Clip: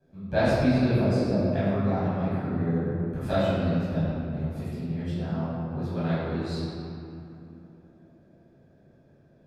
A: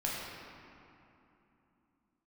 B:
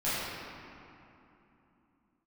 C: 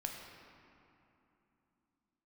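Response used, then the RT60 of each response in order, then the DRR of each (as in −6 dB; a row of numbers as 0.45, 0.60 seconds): B; 3.0, 3.0, 3.0 seconds; −5.5, −13.5, 1.0 decibels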